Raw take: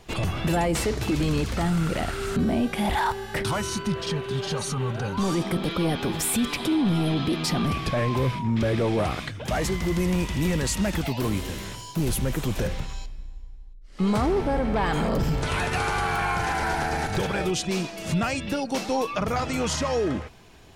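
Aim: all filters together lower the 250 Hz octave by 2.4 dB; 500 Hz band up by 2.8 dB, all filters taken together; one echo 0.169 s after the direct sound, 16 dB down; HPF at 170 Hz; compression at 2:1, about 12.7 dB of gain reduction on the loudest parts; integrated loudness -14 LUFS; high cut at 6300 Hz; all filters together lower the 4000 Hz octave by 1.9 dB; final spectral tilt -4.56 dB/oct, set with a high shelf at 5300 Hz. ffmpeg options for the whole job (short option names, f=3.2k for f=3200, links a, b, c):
-af "highpass=170,lowpass=6.3k,equalizer=f=250:t=o:g=-3,equalizer=f=500:t=o:g=4.5,equalizer=f=4k:t=o:g=-5,highshelf=f=5.3k:g=7.5,acompressor=threshold=-44dB:ratio=2,aecho=1:1:169:0.158,volume=23.5dB"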